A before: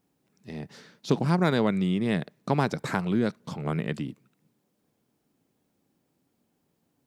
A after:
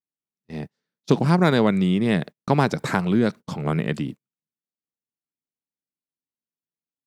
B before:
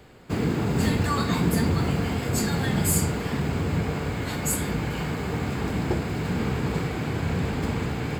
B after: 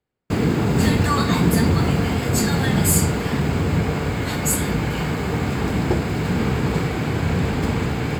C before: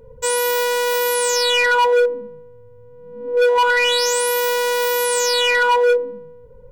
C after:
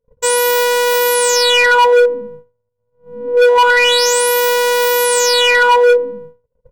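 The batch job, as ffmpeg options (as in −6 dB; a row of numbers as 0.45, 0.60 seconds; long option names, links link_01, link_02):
-af "agate=range=-37dB:threshold=-38dB:ratio=16:detection=peak,volume=5.5dB"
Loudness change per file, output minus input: +5.5, +5.5, +5.5 LU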